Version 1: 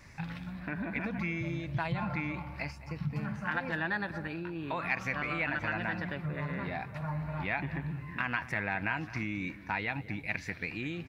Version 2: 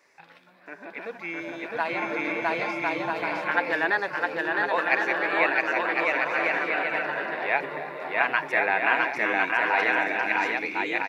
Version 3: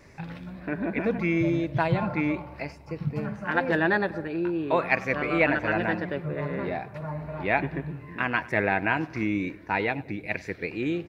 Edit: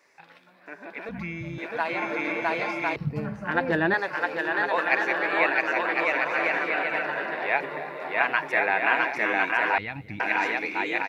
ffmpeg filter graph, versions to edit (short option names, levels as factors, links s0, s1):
-filter_complex "[0:a]asplit=2[s0][s1];[1:a]asplit=4[s2][s3][s4][s5];[s2]atrim=end=1.092[s6];[s0]atrim=start=1.088:end=1.582[s7];[s3]atrim=start=1.578:end=2.962[s8];[2:a]atrim=start=2.958:end=3.942[s9];[s4]atrim=start=3.938:end=9.782[s10];[s1]atrim=start=9.778:end=10.202[s11];[s5]atrim=start=10.198[s12];[s6][s7]acrossfade=d=0.004:c1=hsin:c2=hsin[s13];[s13][s8]acrossfade=d=0.004:c1=hsin:c2=hsin[s14];[s14][s9]acrossfade=d=0.004:c1=hsin:c2=hsin[s15];[s15][s10]acrossfade=d=0.004:c1=hsin:c2=hsin[s16];[s16][s11]acrossfade=d=0.004:c1=hsin:c2=hsin[s17];[s17][s12]acrossfade=d=0.004:c1=hsin:c2=hsin"